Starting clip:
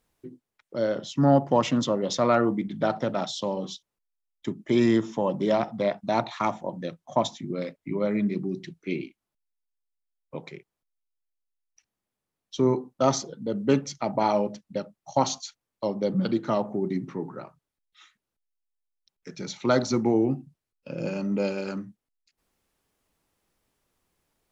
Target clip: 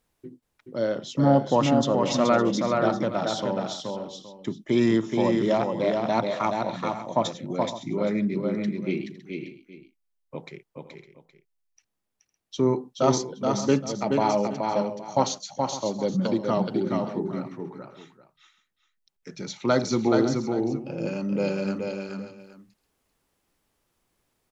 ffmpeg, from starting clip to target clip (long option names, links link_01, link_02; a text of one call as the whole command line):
ffmpeg -i in.wav -af "aecho=1:1:426|508|559|819:0.631|0.141|0.188|0.141" out.wav